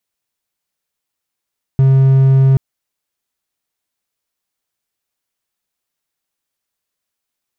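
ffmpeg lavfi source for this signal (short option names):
-f lavfi -i "aevalsrc='0.596*(1-4*abs(mod(134*t+0.25,1)-0.5))':d=0.78:s=44100"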